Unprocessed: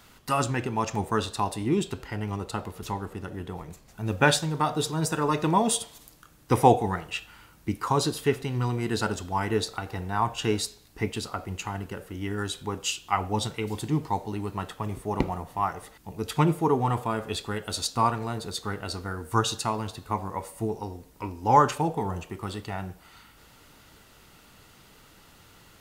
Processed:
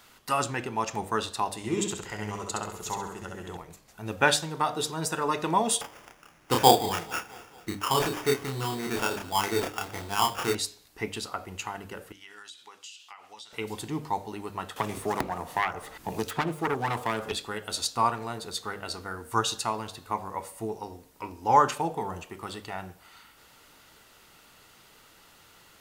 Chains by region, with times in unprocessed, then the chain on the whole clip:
1.57–3.57 s: peaking EQ 6.9 kHz +13 dB 0.33 oct + band-stop 270 Hz, Q 6 + feedback delay 67 ms, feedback 41%, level -3.5 dB
5.81–10.55 s: sample-rate reducer 4.1 kHz + doubling 30 ms -3 dB + feedback delay 222 ms, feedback 57%, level -22 dB
12.12–13.53 s: band-pass filter 4.2 kHz, Q 0.79 + compression 12:1, threshold -41 dBFS
14.76–17.32 s: self-modulated delay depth 0.47 ms + three bands compressed up and down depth 100%
whole clip: bass shelf 280 Hz -9 dB; hum notches 50/100/150/200/250/300 Hz

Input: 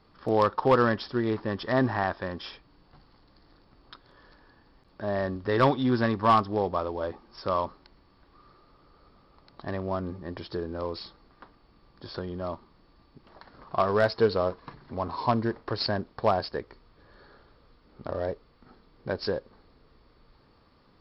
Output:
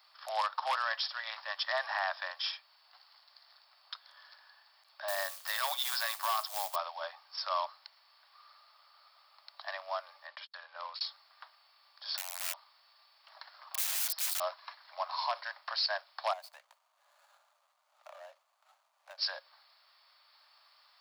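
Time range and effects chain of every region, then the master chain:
5.08–6.76 s: treble shelf 3.8 kHz +6 dB + companded quantiser 6-bit
10.27–11.01 s: low-pass 3.7 kHz + gate -42 dBFS, range -46 dB + peaking EQ 680 Hz -7 dB 0.3 oct
12.06–14.40 s: dynamic bell 120 Hz, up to -6 dB, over -50 dBFS, Q 5.7 + integer overflow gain 29 dB
16.33–19.18 s: median filter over 25 samples + treble shelf 2.2 kHz -8.5 dB + compression 5:1, threshold -36 dBFS
whole clip: steep high-pass 590 Hz 96 dB/octave; tilt EQ +4.5 dB/octave; peak limiter -19.5 dBFS; trim -2.5 dB

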